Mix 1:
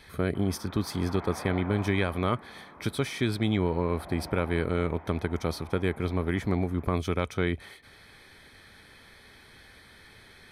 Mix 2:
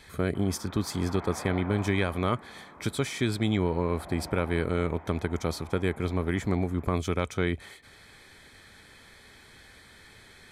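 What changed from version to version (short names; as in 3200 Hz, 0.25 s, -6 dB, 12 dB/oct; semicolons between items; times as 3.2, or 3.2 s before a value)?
speech: add bell 7300 Hz +12 dB 0.29 oct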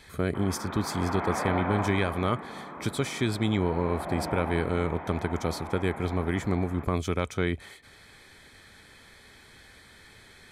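background +9.5 dB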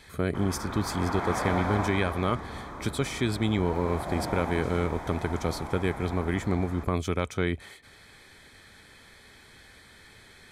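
background: remove elliptic band-pass 160–2800 Hz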